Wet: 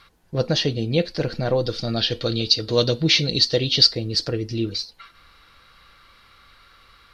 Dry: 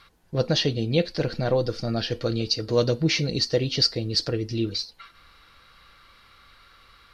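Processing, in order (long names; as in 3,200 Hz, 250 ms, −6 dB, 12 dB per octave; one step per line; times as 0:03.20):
0:01.65–0:03.93: parametric band 3,600 Hz +11 dB 0.69 octaves
level +1.5 dB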